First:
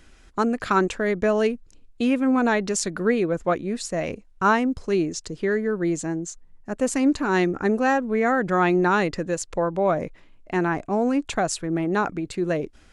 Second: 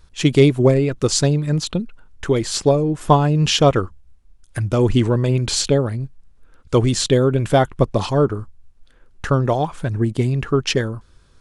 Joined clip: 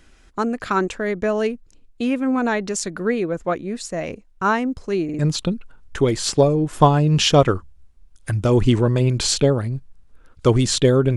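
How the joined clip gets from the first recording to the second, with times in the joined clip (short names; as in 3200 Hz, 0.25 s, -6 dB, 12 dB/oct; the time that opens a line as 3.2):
first
5.04 stutter in place 0.05 s, 3 plays
5.19 switch to second from 1.47 s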